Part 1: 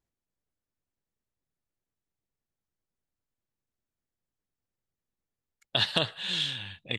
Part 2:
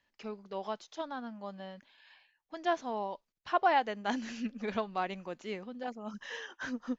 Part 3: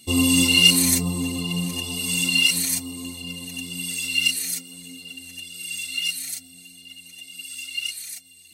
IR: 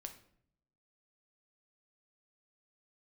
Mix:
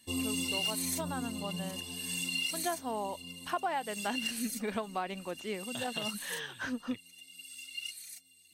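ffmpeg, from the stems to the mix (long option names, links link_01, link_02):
-filter_complex "[0:a]lowpass=3100,volume=-14dB[link_01];[1:a]volume=2dB[link_02];[2:a]lowshelf=frequency=63:gain=-9.5,asoftclip=type=hard:threshold=-10dB,volume=-12dB[link_03];[link_01][link_02][link_03]amix=inputs=3:normalize=0,acompressor=threshold=-30dB:ratio=6"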